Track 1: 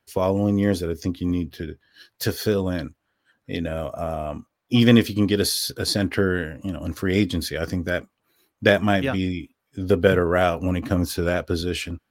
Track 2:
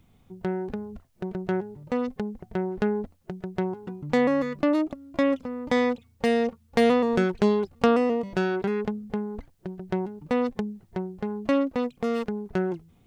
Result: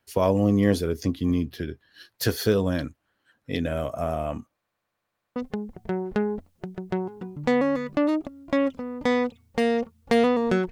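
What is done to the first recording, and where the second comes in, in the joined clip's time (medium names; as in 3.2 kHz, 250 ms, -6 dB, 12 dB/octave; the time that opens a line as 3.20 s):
track 1
4.56 s: stutter in place 0.10 s, 8 plays
5.36 s: go over to track 2 from 2.02 s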